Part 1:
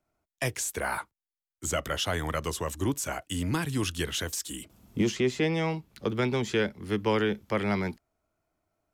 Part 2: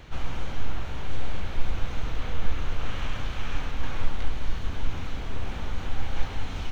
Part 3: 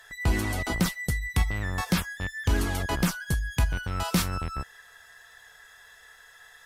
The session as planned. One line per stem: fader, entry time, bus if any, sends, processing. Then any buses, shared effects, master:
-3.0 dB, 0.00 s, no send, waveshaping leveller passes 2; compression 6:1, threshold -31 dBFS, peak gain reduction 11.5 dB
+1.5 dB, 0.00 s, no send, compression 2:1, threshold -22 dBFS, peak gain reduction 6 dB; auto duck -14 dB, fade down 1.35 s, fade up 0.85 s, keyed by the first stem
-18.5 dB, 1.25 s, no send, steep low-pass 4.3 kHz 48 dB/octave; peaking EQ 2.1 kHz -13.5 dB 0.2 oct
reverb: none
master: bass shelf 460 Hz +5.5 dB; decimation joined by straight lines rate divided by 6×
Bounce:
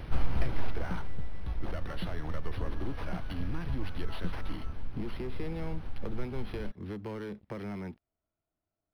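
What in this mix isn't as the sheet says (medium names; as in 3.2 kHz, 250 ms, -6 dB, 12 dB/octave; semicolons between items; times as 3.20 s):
stem 1 -3.0 dB -> -9.5 dB; stem 3: entry 1.25 s -> 0.10 s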